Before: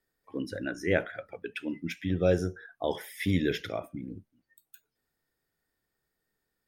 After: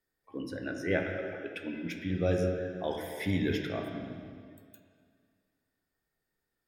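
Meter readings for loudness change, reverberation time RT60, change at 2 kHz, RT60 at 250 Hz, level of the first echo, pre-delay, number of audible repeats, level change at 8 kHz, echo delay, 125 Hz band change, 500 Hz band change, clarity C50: -2.0 dB, 2.1 s, -2.0 dB, 2.1 s, no echo, 8 ms, no echo, -4.0 dB, no echo, -1.5 dB, -2.0 dB, 3.5 dB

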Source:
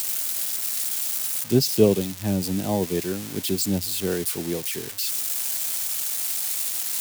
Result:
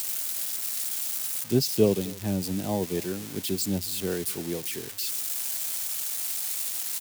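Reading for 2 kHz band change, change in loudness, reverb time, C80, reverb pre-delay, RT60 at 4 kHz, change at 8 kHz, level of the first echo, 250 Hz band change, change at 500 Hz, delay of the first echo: -4.0 dB, -4.0 dB, no reverb, no reverb, no reverb, no reverb, -4.0 dB, -22.5 dB, -4.0 dB, -4.0 dB, 254 ms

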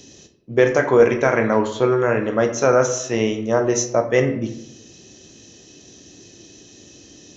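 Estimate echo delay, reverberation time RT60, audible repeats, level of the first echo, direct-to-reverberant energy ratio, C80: no echo, 0.80 s, no echo, no echo, 6.5 dB, 13.0 dB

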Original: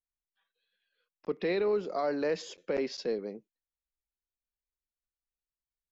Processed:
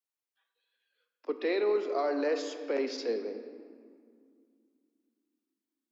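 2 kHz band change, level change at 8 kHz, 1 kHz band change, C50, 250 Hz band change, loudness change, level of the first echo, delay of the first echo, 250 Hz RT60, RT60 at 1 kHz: +1.0 dB, no reading, +1.0 dB, 8.5 dB, +0.5 dB, +0.5 dB, no echo, no echo, 3.5 s, 2.2 s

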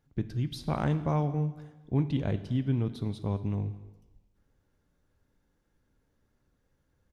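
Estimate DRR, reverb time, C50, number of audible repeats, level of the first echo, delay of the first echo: 11.0 dB, 1.2 s, 13.5 dB, 1, -22.5 dB, 215 ms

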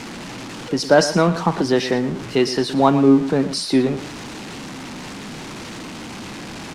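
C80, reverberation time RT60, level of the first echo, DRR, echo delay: no reverb, no reverb, -13.5 dB, no reverb, 116 ms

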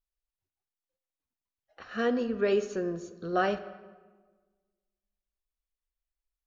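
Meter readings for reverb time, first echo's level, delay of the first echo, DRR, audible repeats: 1.4 s, no echo, no echo, 11.0 dB, no echo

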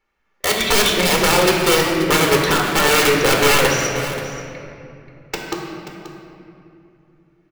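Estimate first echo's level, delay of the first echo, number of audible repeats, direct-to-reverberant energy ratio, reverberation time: -13.5 dB, 532 ms, 1, -0.5 dB, 2.8 s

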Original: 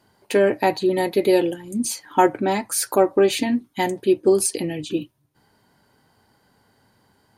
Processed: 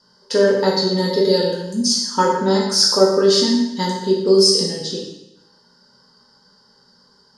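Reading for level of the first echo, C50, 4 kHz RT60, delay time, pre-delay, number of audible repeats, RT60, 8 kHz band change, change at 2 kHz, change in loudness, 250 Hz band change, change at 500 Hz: no echo, 3.0 dB, 0.85 s, no echo, 10 ms, no echo, 0.90 s, +4.0 dB, -0.5 dB, +4.5 dB, +2.5 dB, +3.0 dB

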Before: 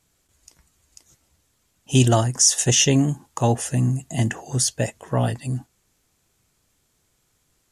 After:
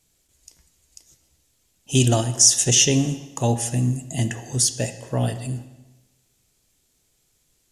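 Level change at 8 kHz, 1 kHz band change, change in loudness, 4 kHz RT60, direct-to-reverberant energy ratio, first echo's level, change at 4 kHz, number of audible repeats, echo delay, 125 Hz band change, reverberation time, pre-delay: +2.5 dB, -4.0 dB, +0.5 dB, 1.0 s, 9.0 dB, no echo, +1.5 dB, no echo, no echo, -1.5 dB, 1.1 s, 5 ms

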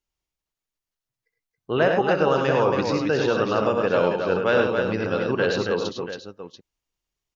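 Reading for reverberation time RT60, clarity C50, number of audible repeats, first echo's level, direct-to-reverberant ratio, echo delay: no reverb, no reverb, 4, -9.5 dB, no reverb, 65 ms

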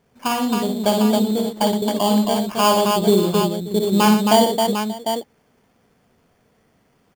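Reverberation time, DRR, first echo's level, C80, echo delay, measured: no reverb, no reverb, -5.0 dB, no reverb, 56 ms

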